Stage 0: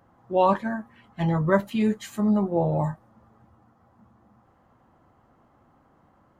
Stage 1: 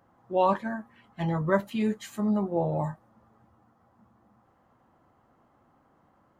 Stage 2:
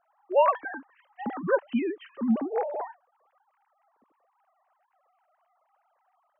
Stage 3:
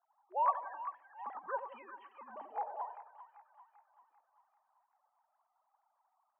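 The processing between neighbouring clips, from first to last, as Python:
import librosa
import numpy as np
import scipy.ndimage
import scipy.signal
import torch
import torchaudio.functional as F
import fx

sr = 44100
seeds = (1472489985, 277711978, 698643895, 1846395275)

y1 = fx.low_shelf(x, sr, hz=120.0, db=-5.5)
y1 = y1 * librosa.db_to_amplitude(-3.0)
y2 = fx.sine_speech(y1, sr)
y3 = fx.ladder_bandpass(y2, sr, hz=1000.0, resonance_pct=60)
y3 = fx.hpss(y3, sr, part='harmonic', gain_db=-7)
y3 = fx.echo_split(y3, sr, split_hz=1000.0, low_ms=88, high_ms=392, feedback_pct=52, wet_db=-9.0)
y3 = y3 * librosa.db_to_amplitude(1.0)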